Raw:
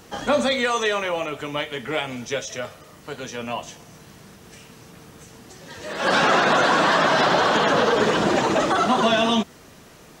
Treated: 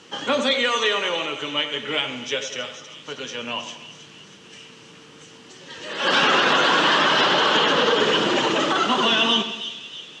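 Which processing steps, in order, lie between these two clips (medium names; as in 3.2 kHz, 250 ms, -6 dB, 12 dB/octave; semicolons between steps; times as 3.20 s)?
cabinet simulation 180–7500 Hz, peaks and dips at 210 Hz -4 dB, 690 Hz -9 dB, 3 kHz +10 dB; on a send: two-band feedback delay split 2.6 kHz, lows 93 ms, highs 319 ms, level -10 dB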